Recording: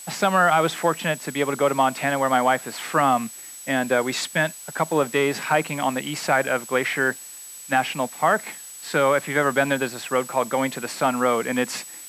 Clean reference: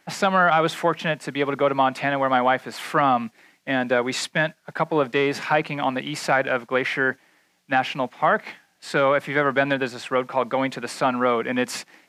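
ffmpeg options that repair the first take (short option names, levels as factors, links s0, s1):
-af "adeclick=t=4,bandreject=f=7900:w=30,afftdn=nr=18:nf=-40"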